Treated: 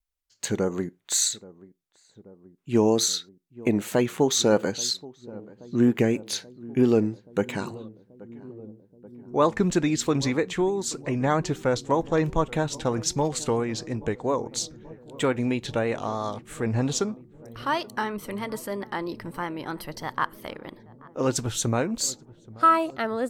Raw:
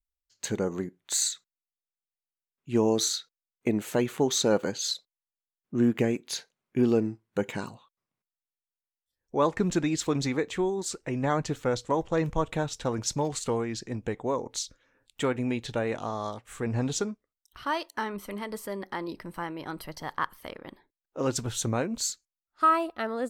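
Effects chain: filtered feedback delay 830 ms, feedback 81%, low-pass 890 Hz, level -20 dB; vibrato 3.1 Hz 43 cents; trim +3.5 dB

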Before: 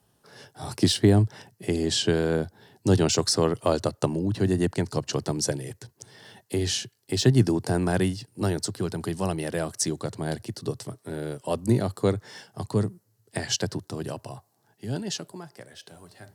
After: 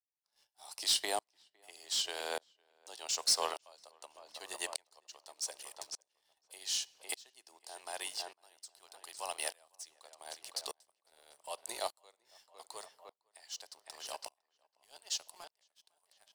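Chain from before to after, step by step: high-pass 830 Hz 24 dB/octave; peaking EQ 1.5 kHz -13.5 dB 1 oct; waveshaping leveller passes 2; tape echo 506 ms, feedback 43%, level -10 dB, low-pass 2.5 kHz; on a send at -23.5 dB: reverberation RT60 1.0 s, pre-delay 3 ms; on the sum: sawtooth tremolo in dB swelling 0.84 Hz, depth 34 dB

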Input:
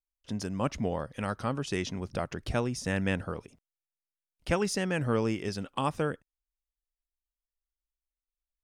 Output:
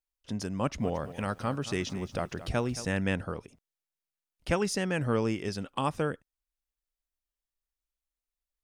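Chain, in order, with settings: 0.58–2.85 s: bit-crushed delay 224 ms, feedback 35%, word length 9-bit, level -14 dB

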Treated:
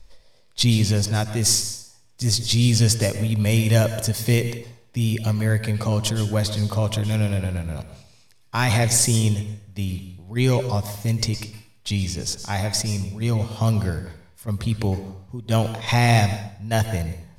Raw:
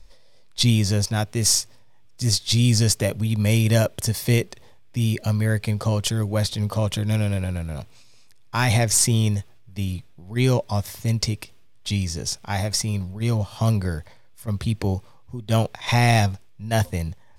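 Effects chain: plate-style reverb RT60 0.57 s, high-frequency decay 0.95×, pre-delay 100 ms, DRR 9.5 dB

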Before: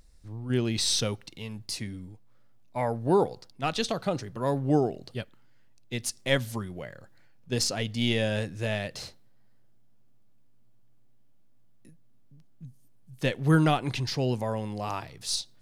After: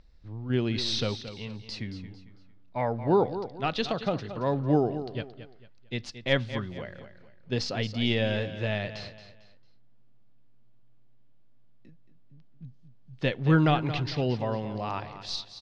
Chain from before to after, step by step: low-pass 4.5 kHz 24 dB/octave; on a send: feedback delay 225 ms, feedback 34%, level -12 dB

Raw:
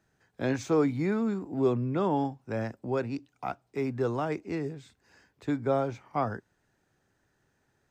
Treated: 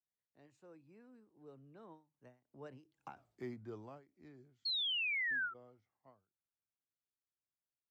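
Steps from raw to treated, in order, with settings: Doppler pass-by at 3.19 s, 36 m/s, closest 2.3 m; painted sound fall, 4.65–5.54 s, 1.3–4.4 kHz -35 dBFS; endings held to a fixed fall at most 180 dB/s; trim -1.5 dB

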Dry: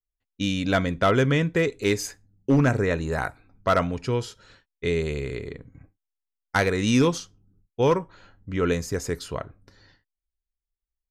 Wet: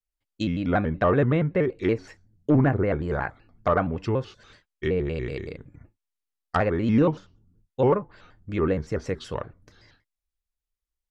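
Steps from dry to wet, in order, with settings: low-pass that closes with the level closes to 1.4 kHz, closed at -21 dBFS; vibrato with a chosen wave square 5.3 Hz, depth 160 cents

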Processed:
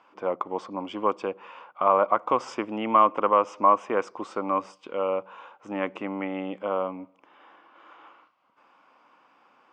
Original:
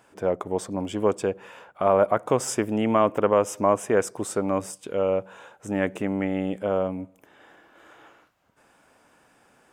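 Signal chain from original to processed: cabinet simulation 350–4200 Hz, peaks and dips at 420 Hz -8 dB, 650 Hz -6 dB, 1.1 kHz +8 dB, 1.7 kHz -9 dB, 3.8 kHz -7 dB; trim +1.5 dB

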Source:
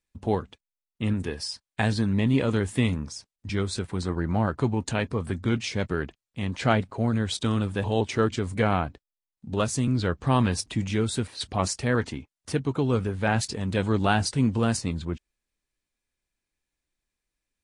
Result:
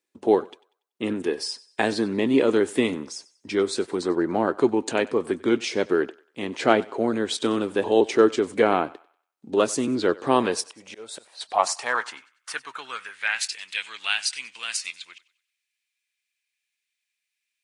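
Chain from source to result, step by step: 10.66–11.49 s: slow attack 444 ms; thinning echo 95 ms, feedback 37%, high-pass 500 Hz, level -20 dB; high-pass sweep 350 Hz -> 2.4 kHz, 10.24–13.58 s; trim +2.5 dB

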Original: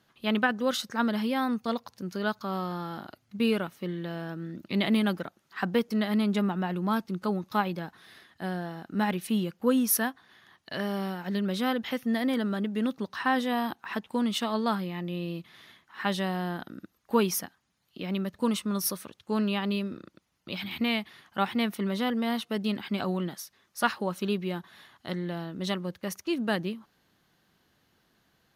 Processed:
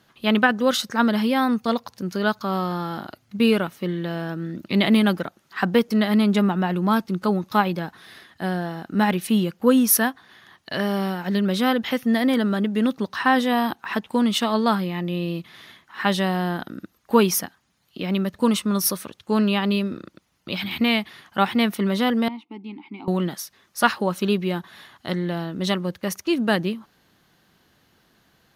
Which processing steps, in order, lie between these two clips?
22.28–23.08 s: vowel filter u; trim +7.5 dB

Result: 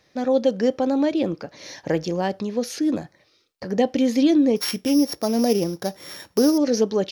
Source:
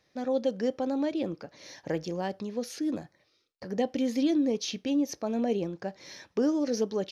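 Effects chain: 4.56–6.58 s: sorted samples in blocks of 8 samples; trim +8.5 dB

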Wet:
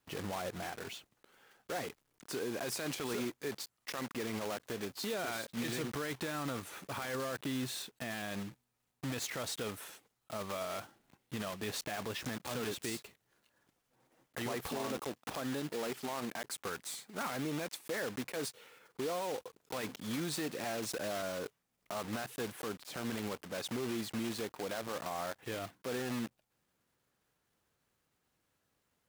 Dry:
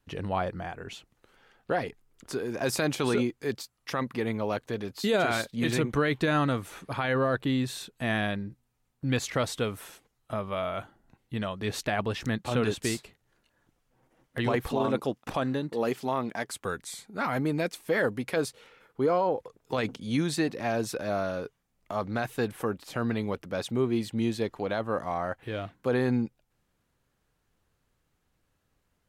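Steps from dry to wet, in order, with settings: block-companded coder 3-bit; high-pass 180 Hz 6 dB/octave; peak limiter -25.5 dBFS, peak gain reduction 11 dB; trim -3 dB

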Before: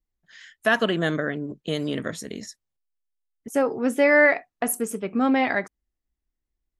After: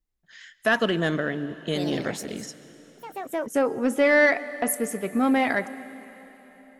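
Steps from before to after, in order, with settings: saturation -10.5 dBFS, distortion -21 dB; reverberation RT60 4.2 s, pre-delay 109 ms, DRR 16 dB; 1.62–3.71 s: ever faster or slower copies 86 ms, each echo +3 st, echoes 3, each echo -6 dB

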